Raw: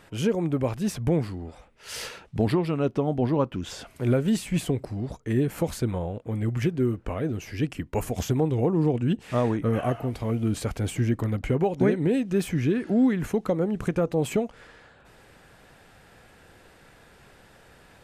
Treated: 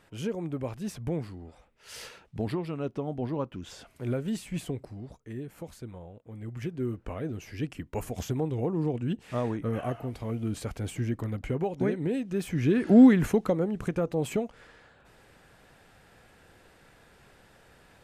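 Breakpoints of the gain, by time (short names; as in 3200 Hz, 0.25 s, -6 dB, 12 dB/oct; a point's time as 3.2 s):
4.77 s -8 dB
5.43 s -15 dB
6.26 s -15 dB
6.94 s -6 dB
12.43 s -6 dB
12.99 s +6 dB
13.73 s -4 dB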